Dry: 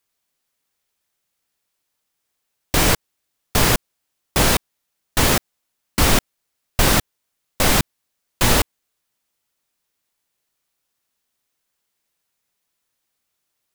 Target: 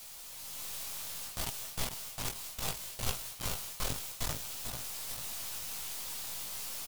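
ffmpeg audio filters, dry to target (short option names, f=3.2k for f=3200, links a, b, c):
-filter_complex "[0:a]aeval=exprs='val(0)+0.5*0.0501*sgn(val(0))':c=same,areverse,acompressor=threshold=-24dB:ratio=6,areverse,equalizer=f=160:t=o:w=1.2:g=-12.5,asplit=2[a][b];[b]adelay=15,volume=-11dB[c];[a][c]amix=inputs=2:normalize=0,asplit=2[d][e];[e]adelay=888,lowpass=f=2k:p=1,volume=-7dB,asplit=2[f][g];[g]adelay=888,lowpass=f=2k:p=1,volume=0.4,asplit=2[h][i];[i]adelay=888,lowpass=f=2k:p=1,volume=0.4,asplit=2[j][k];[k]adelay=888,lowpass=f=2k:p=1,volume=0.4,asplit=2[l][m];[m]adelay=888,lowpass=f=2k:p=1,volume=0.4[n];[d][f][h][j][l][n]amix=inputs=6:normalize=0,dynaudnorm=f=120:g=17:m=9dB,equalizer=f=860:t=o:w=0.98:g=-8.5,asetrate=88200,aresample=44100,flanger=delay=17:depth=2.5:speed=0.61,aeval=exprs='clip(val(0),-1,0.01)':c=same,volume=-7.5dB"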